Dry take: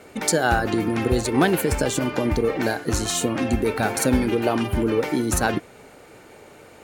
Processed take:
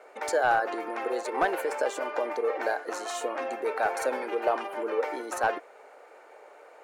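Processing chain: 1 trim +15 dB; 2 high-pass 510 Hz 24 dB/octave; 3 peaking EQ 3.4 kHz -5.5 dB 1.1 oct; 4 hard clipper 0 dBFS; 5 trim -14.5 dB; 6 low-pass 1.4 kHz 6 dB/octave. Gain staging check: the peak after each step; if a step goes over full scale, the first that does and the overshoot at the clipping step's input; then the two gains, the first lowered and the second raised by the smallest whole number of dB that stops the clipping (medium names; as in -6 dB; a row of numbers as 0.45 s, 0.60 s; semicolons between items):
+11.0 dBFS, +10.0 dBFS, +9.0 dBFS, 0.0 dBFS, -14.5 dBFS, -14.5 dBFS; step 1, 9.0 dB; step 1 +6 dB, step 5 -5.5 dB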